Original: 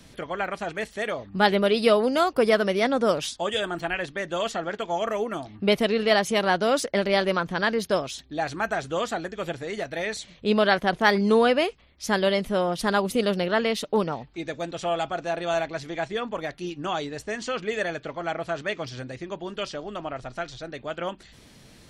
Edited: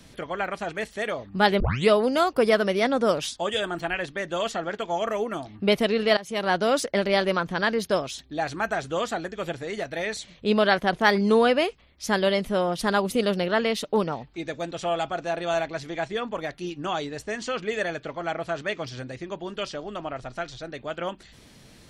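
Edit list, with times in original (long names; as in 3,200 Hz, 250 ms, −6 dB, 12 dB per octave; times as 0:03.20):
0:01.60: tape start 0.29 s
0:06.17–0:06.56: fade in, from −20 dB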